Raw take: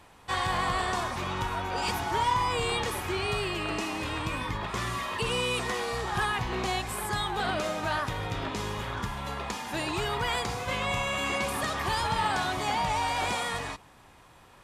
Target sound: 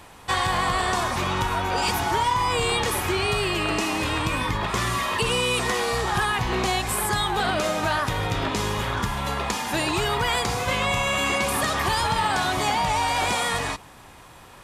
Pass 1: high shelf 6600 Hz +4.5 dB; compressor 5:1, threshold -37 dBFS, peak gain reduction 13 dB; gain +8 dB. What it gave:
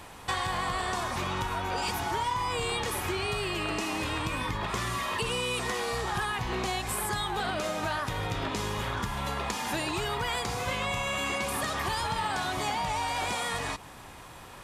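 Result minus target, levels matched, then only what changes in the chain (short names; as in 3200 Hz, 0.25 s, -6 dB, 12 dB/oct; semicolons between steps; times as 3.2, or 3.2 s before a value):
compressor: peak gain reduction +7.5 dB
change: compressor 5:1, threshold -27.5 dBFS, peak gain reduction 5.5 dB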